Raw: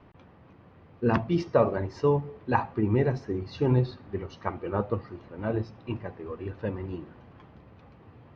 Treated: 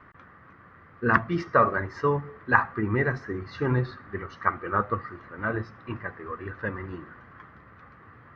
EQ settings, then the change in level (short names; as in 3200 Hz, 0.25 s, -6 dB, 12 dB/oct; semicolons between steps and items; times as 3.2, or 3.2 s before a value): band shelf 1500 Hz +15 dB 1.1 oct; -2.0 dB